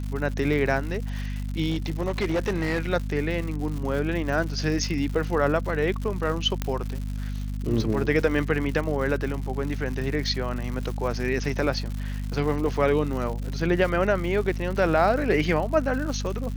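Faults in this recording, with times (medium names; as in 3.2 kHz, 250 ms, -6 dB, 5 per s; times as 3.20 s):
crackle 190 per s -32 dBFS
hum 50 Hz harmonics 5 -30 dBFS
1.69–2.82 s: clipped -20.5 dBFS
6.62 s: pop -12 dBFS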